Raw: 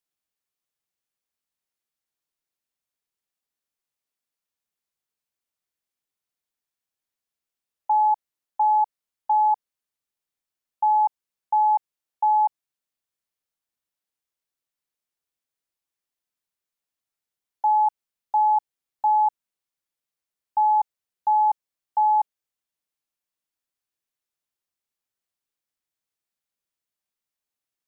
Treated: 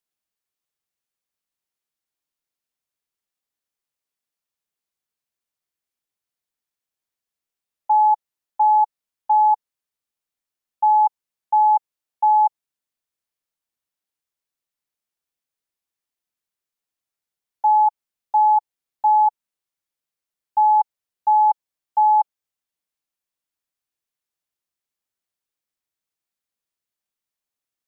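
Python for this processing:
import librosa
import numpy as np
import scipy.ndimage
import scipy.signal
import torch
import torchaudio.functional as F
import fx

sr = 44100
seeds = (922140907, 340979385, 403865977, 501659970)

y = fx.dynamic_eq(x, sr, hz=860.0, q=4.5, threshold_db=-30.0, ratio=4.0, max_db=4)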